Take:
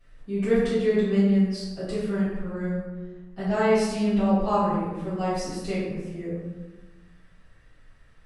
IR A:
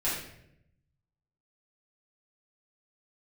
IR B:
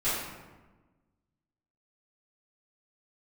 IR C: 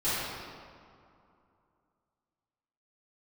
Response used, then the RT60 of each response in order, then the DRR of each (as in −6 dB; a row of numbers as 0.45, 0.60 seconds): B; 0.75, 1.2, 2.5 seconds; −10.0, −15.0, −16.0 decibels